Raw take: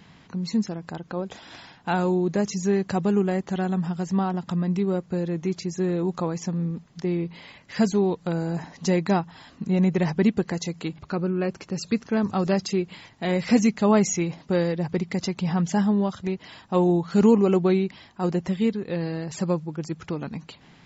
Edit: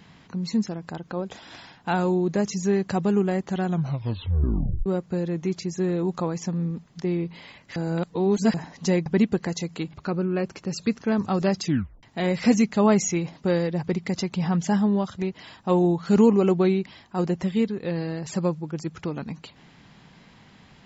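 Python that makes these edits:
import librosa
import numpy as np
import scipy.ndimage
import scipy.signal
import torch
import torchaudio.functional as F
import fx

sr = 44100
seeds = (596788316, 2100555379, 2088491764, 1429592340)

y = fx.edit(x, sr, fx.tape_stop(start_s=3.66, length_s=1.2),
    fx.reverse_span(start_s=7.76, length_s=0.78),
    fx.cut(start_s=9.06, length_s=1.05),
    fx.tape_stop(start_s=12.69, length_s=0.39), tone=tone)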